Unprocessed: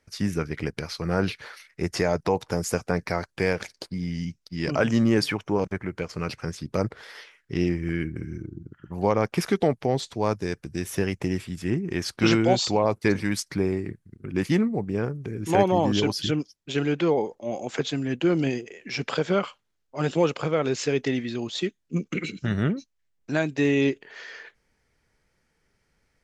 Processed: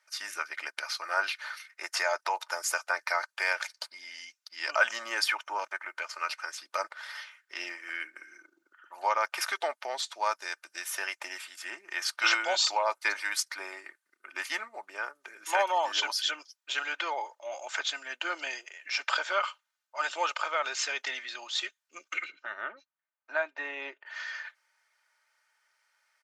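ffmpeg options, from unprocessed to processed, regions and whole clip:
-filter_complex "[0:a]asettb=1/sr,asplit=3[s0][s1][s2];[s0]atrim=end=22.244[s3];[s1]atrim=start=22.24:end=24.06,asetpts=PTS-STARTPTS,afade=t=in:d=0.004:c=qsin,afade=t=out:st=1.816:d=0.004:c=qsin,lowpass=f=1500:p=1,aemphasis=mode=reproduction:type=75fm[s4];[s2]atrim=start=24.056[s5];[s3][s4]acrossfade=d=0.004:c1=hsin:c2=qsin[s6];[s6][s5]acrossfade=d=0.004:c1=qsin:c2=hsin,highpass=f=780:w=0.5412,highpass=f=780:w=1.3066,equalizer=f=1400:w=3.5:g=5,aecho=1:1:3.3:0.53"

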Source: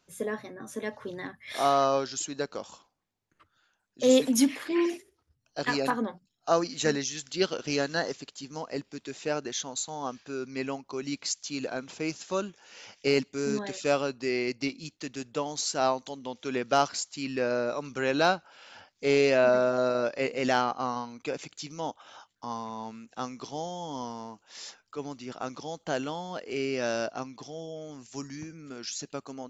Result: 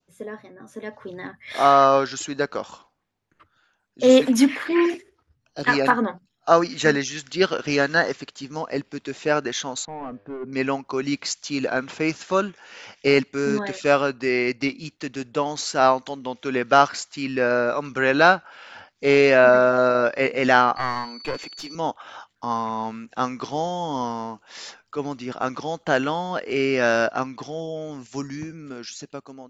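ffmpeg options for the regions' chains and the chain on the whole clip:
-filter_complex "[0:a]asettb=1/sr,asplit=3[s0][s1][s2];[s0]atrim=end=4.944[s3];[s1]atrim=start=4.94:end=5.64,asetpts=PTS-STARTPTS,afade=t=in:d=0.004:c=qsin,afade=t=out:st=0.696:d=0.004:c=qsin,lowpass=10000,asoftclip=type=hard:threshold=0.1,acrossover=split=460|3000[s4][s5][s6];[s5]acompressor=threshold=0.001:ratio=1.5:attack=3.2:release=140:knee=2.83:detection=peak[s7];[s4][s7][s6]amix=inputs=3:normalize=0[s8];[s2]atrim=start=5.636[s9];[s3][s8]acrossfade=d=0.004:c1=hsin:c2=qsin[s10];[s10][s9]acrossfade=d=0.004:c1=qsin:c2=hsin,asettb=1/sr,asplit=3[s11][s12][s13];[s11]atrim=end=9.854[s14];[s12]atrim=start=9.85:end=10.53,asetpts=PTS-STARTPTS,afade=t=in:d=0.004:c=qsin,afade=t=out:st=0.676:d=0.004:c=qsin,asoftclip=type=hard:threshold=0.015,bandreject=f=99.68:t=h:w=4,bandreject=f=199.36:t=h:w=4,bandreject=f=299.04:t=h:w=4,bandreject=f=398.72:t=h:w=4,bandreject=f=498.4:t=h:w=4,bandreject=f=598.08:t=h:w=4,bandreject=f=697.76:t=h:w=4,adynamicsmooth=sensitivity=1:basefreq=1000[s15];[s13]atrim=start=10.526[s16];[s14][s15]acrossfade=d=0.004:c1=hsin:c2=qsin[s17];[s17][s16]acrossfade=d=0.004:c1=qsin:c2=hsin,asettb=1/sr,asplit=3[s18][s19][s20];[s18]atrim=end=20.764[s21];[s19]atrim=start=20.76:end=21.75,asetpts=PTS-STARTPTS,afade=t=in:d=0.004:c=qsin,afade=t=out:st=0.986:d=0.004:c=qsin,highpass=f=230:w=0.5412,highpass=f=230:w=1.3066,aeval=exprs='clip(val(0),-1,0.0119)':c=same,aeval=exprs='val(0)+0.00794*sin(2*PI*4500*n/s)':c=same[s22];[s20]atrim=start=21.746[s23];[s21][s22]acrossfade=d=0.004:c1=hsin:c2=qsin[s24];[s24][s23]acrossfade=d=0.004:c1=qsin:c2=hsin,highshelf=f=5500:g=-11,dynaudnorm=f=520:g=5:m=3.76,adynamicequalizer=threshold=0.0224:dfrequency=1600:dqfactor=0.98:tfrequency=1600:tqfactor=0.98:attack=5:release=100:ratio=0.375:range=3.5:mode=boostabove:tftype=bell,volume=0.75"

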